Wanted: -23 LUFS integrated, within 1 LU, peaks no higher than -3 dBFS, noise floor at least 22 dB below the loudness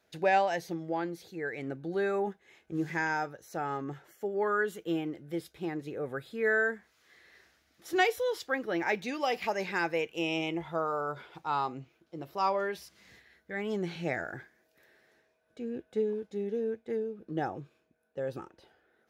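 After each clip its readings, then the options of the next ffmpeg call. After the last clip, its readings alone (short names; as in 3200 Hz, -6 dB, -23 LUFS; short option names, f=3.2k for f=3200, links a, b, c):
loudness -33.0 LUFS; peak -15.0 dBFS; loudness target -23.0 LUFS
-> -af "volume=10dB"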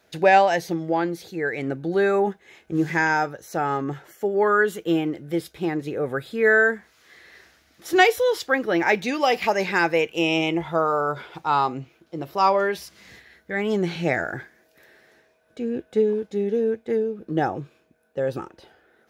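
loudness -23.0 LUFS; peak -5.0 dBFS; noise floor -62 dBFS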